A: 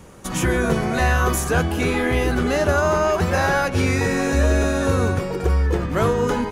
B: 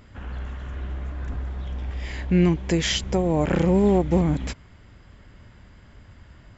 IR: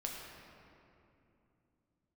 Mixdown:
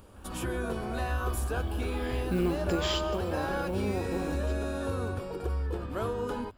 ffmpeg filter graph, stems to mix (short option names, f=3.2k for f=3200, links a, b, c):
-filter_complex "[0:a]volume=-10dB[a];[1:a]acompressor=mode=upward:threshold=-41dB:ratio=2.5,acrusher=bits=7:mode=log:mix=0:aa=0.000001,volume=-4dB,afade=t=in:st=0.87:d=0.27:silence=0.298538,afade=t=out:st=2.95:d=0.26:silence=0.398107,asplit=2[b][c];[c]volume=-7dB[d];[2:a]atrim=start_sample=2205[e];[d][e]afir=irnorm=-1:irlink=0[f];[a][b][f]amix=inputs=3:normalize=0,equalizer=f=160:t=o:w=0.33:g=-12,equalizer=f=2k:t=o:w=0.33:g=-11,equalizer=f=6.3k:t=o:w=0.33:g=-11,acompressor=threshold=-32dB:ratio=1.5"